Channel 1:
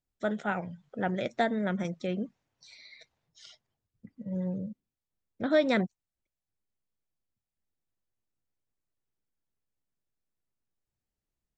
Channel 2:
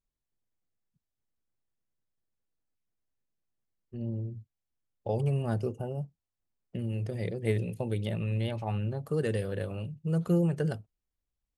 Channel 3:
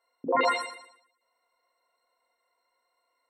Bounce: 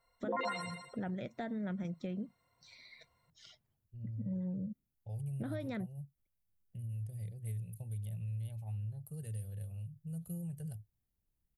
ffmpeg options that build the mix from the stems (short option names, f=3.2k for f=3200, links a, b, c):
-filter_complex "[0:a]bass=f=250:g=10,treble=f=4k:g=-4,alimiter=limit=-23.5dB:level=0:latency=1:release=424,volume=-4dB[a];[1:a]firequalizer=gain_entry='entry(110,0);entry(280,-26);entry(530,-20);entry(760,-17);entry(1100,-27);entry(2300,-17);entry(5600,-13);entry(11000,10)':delay=0.05:min_phase=1,volume=-4.5dB[b];[2:a]volume=-1dB[c];[a][b][c]amix=inputs=3:normalize=0,acompressor=threshold=-37dB:ratio=3"